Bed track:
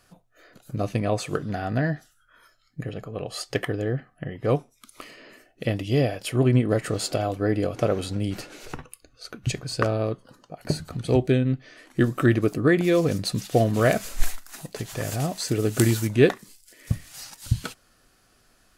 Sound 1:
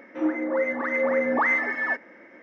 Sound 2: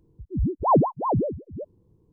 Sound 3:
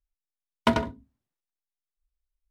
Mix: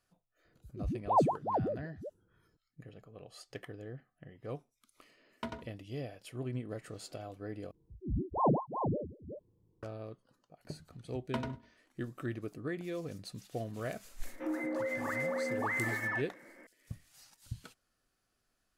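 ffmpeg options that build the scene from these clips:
ffmpeg -i bed.wav -i cue0.wav -i cue1.wav -i cue2.wav -filter_complex "[2:a]asplit=2[link_01][link_02];[3:a]asplit=2[link_03][link_04];[0:a]volume=-19dB[link_05];[link_01]lowpass=frequency=840:width_type=q:width=2.2[link_06];[link_02]asplit=2[link_07][link_08];[link_08]adelay=37,volume=-2dB[link_09];[link_07][link_09]amix=inputs=2:normalize=0[link_10];[link_04]aecho=1:1:100|200|300:0.0891|0.0348|0.0136[link_11];[1:a]acompressor=threshold=-24dB:ratio=6:attack=3.2:release=140:knee=1:detection=peak[link_12];[link_05]asplit=2[link_13][link_14];[link_13]atrim=end=7.714[link_15];[link_10]atrim=end=2.12,asetpts=PTS-STARTPTS,volume=-12dB[link_16];[link_14]atrim=start=9.826[link_17];[link_06]atrim=end=2.12,asetpts=PTS-STARTPTS,volume=-12dB,afade=type=in:duration=0.004:curve=hsin,afade=type=out:start_time=2.116:duration=0.004:curve=hsin,adelay=450[link_18];[link_03]atrim=end=2.5,asetpts=PTS-STARTPTS,volume=-18dB,afade=type=in:duration=0.004:curve=hsin,afade=type=out:start_time=2.496:duration=0.004:curve=hsin,adelay=4760[link_19];[link_11]atrim=end=2.5,asetpts=PTS-STARTPTS,volume=-15.5dB,afade=type=in:duration=0.004:curve=hsin,afade=type=out:start_time=2.496:duration=0.004:curve=hsin,adelay=10670[link_20];[link_12]atrim=end=2.42,asetpts=PTS-STARTPTS,volume=-7dB,afade=type=in:duration=0.004:curve=hsin,afade=type=out:start_time=2.416:duration=0.004:curve=hsin,adelay=14250[link_21];[link_15][link_16]acrossfade=duration=0.004:curve1=hsin:curve2=hsin[link_22];[link_22][link_17]acrossfade=duration=0.004:curve1=hsin:curve2=hsin[link_23];[link_23][link_18][link_19][link_20][link_21]amix=inputs=5:normalize=0" out.wav

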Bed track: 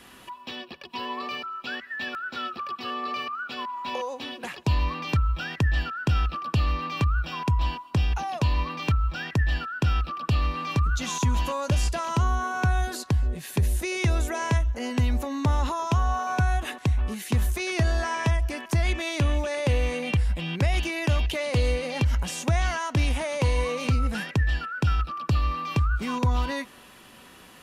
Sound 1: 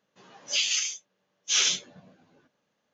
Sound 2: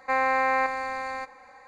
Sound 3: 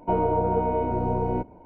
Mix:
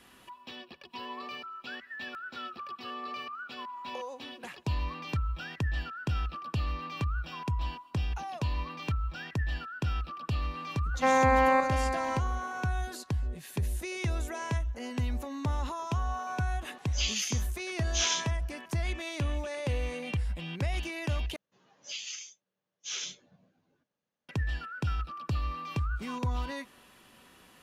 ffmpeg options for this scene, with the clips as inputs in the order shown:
ffmpeg -i bed.wav -i cue0.wav -i cue1.wav -filter_complex "[1:a]asplit=2[link_01][link_02];[0:a]volume=-8dB[link_03];[2:a]equalizer=frequency=220:width_type=o:width=3:gain=14[link_04];[link_02]lowshelf=frequency=140:gain=8[link_05];[link_03]asplit=2[link_06][link_07];[link_06]atrim=end=21.364[link_08];[link_05]atrim=end=2.93,asetpts=PTS-STARTPTS,volume=-13.5dB[link_09];[link_07]atrim=start=24.286[link_10];[link_04]atrim=end=1.67,asetpts=PTS-STARTPTS,volume=-5dB,afade=type=in:duration=0.004:curve=hsin,afade=type=out:start_time=1.666:duration=0.004:curve=hsin,adelay=10940[link_11];[link_01]atrim=end=2.93,asetpts=PTS-STARTPTS,volume=-6dB,afade=type=in:duration=0.004:curve=hsin,afade=type=out:start_time=2.926:duration=0.004:curve=hsin,adelay=16450[link_12];[link_08][link_09]acrossfade=duration=0.004:curve1=hsin:curve2=hsin[link_13];[link_13][link_10]acrossfade=duration=0.004:curve1=hsin:curve2=hsin[link_14];[link_14][link_11][link_12]amix=inputs=3:normalize=0" out.wav

